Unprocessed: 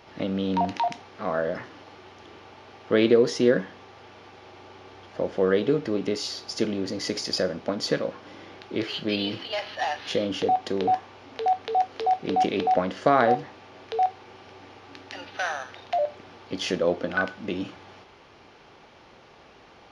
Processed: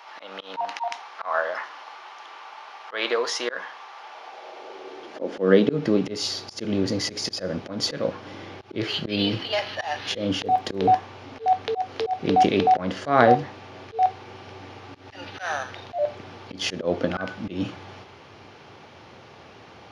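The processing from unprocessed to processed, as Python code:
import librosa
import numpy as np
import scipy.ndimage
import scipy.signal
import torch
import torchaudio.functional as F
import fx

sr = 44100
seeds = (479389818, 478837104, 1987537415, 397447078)

y = fx.filter_sweep_highpass(x, sr, from_hz=970.0, to_hz=96.0, start_s=3.96, end_s=6.29, q=2.0)
y = fx.auto_swell(y, sr, attack_ms=148.0)
y = fx.dmg_crackle(y, sr, seeds[0], per_s=36.0, level_db=-44.0, at=(10.4, 10.89), fade=0.02)
y = y * 10.0 ** (4.5 / 20.0)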